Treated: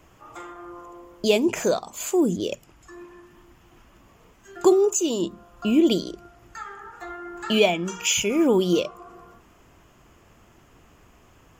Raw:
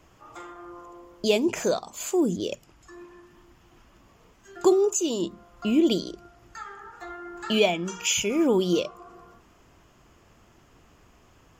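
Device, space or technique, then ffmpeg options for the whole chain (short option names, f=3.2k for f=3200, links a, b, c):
exciter from parts: -filter_complex "[0:a]asplit=2[a][b];[b]highpass=4.7k,asoftclip=type=tanh:threshold=-35.5dB,highpass=f=2.3k:w=0.5412,highpass=f=2.3k:w=1.3066,volume=-7dB[c];[a][c]amix=inputs=2:normalize=0,asettb=1/sr,asplit=3[d][e][f];[d]atrim=end=5.194[g];[e]atrim=start=5.19:end=5.77,asetpts=PTS-STARTPTS,afade=t=in:d=0.004:c=qsin,afade=t=out:st=0.576:d=0.004:c=qsin,bandreject=f=2.1k:w=9.2[h];[f]atrim=start=5.766[i];[g][h]acrossfade=d=0.004:c1=hsin:c2=qsin[j];[j][i]acrossfade=d=0.004:c1=qsin:c2=hsin,volume=2.5dB"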